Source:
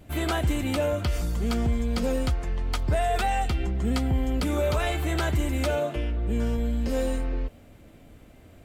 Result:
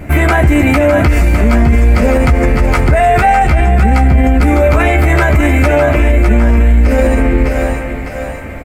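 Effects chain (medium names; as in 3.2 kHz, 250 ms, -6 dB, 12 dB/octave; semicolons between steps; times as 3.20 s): resonant high shelf 2.7 kHz -6.5 dB, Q 3; doubling 14 ms -6 dB; two-band feedback delay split 540 Hz, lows 289 ms, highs 606 ms, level -8 dB; loudness maximiser +22 dB; trim -1 dB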